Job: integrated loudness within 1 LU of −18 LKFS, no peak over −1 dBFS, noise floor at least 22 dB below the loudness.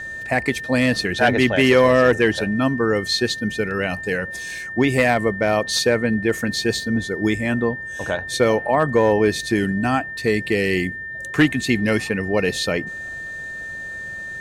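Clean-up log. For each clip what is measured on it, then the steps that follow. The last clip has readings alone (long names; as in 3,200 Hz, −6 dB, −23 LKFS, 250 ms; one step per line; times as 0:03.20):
interfering tone 1,800 Hz; level of the tone −29 dBFS; integrated loudness −20.0 LKFS; sample peak −6.0 dBFS; target loudness −18.0 LKFS
→ notch filter 1,800 Hz, Q 30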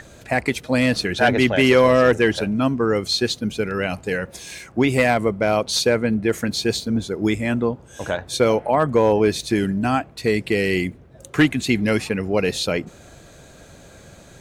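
interfering tone none found; integrated loudness −20.0 LKFS; sample peak −5.5 dBFS; target loudness −18.0 LKFS
→ level +2 dB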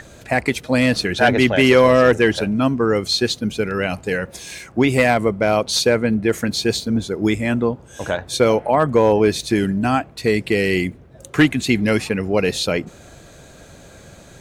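integrated loudness −18.0 LKFS; sample peak −3.5 dBFS; background noise floor −44 dBFS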